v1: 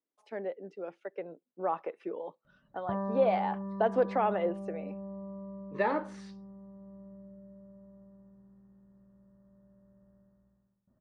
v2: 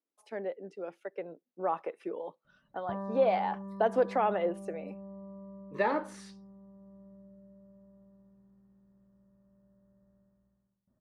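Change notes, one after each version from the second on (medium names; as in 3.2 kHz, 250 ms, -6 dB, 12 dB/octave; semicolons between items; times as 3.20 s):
speech: remove distance through air 92 m; background -4.0 dB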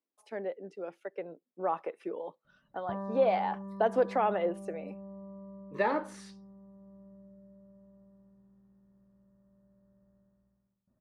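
no change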